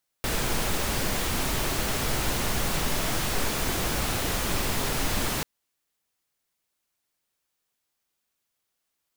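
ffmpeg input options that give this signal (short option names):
-f lavfi -i "anoisesrc=c=pink:a=0.243:d=5.19:r=44100:seed=1"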